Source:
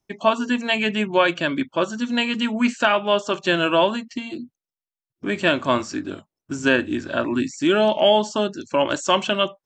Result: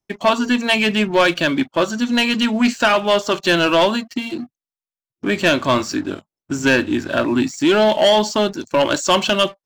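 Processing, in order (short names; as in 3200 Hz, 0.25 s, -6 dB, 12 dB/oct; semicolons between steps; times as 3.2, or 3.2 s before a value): dynamic EQ 4400 Hz, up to +7 dB, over -43 dBFS, Q 2.3; sample leveller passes 2; gain -2 dB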